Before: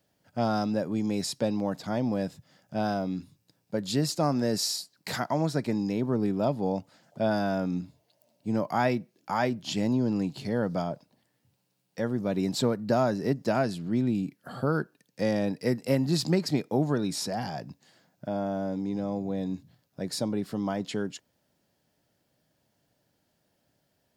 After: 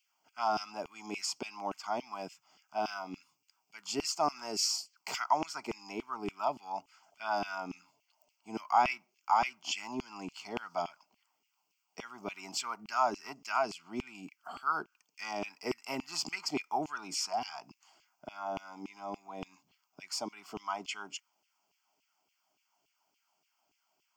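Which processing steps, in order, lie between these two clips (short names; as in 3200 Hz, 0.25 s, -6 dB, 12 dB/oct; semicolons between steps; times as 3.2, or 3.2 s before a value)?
LFO high-pass saw down 3.5 Hz 390–2800 Hz; fixed phaser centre 2600 Hz, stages 8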